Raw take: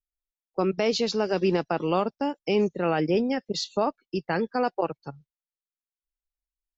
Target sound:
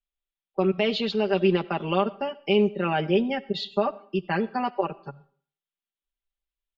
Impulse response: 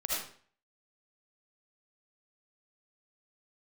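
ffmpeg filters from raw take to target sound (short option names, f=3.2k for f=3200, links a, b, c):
-filter_complex "[0:a]highshelf=f=4.5k:t=q:w=3:g=-10,aecho=1:1:5.1:0.96,asplit=2[a][b];[1:a]atrim=start_sample=2205,lowpass=5.4k[c];[b][c]afir=irnorm=-1:irlink=0,volume=-23dB[d];[a][d]amix=inputs=2:normalize=0,volume=-3.5dB"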